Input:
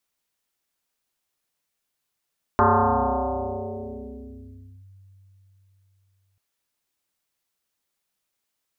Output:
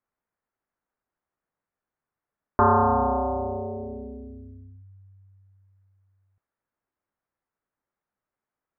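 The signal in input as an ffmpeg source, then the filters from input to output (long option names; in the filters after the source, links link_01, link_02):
-f lavfi -i "aevalsrc='0.224*pow(10,-3*t/4.2)*sin(2*PI*96.6*t+7.5*clip(1-t/2.26,0,1)*sin(2*PI*1.68*96.6*t))':duration=3.79:sample_rate=44100"
-af "lowpass=frequency=1700:width=0.5412,lowpass=frequency=1700:width=1.3066"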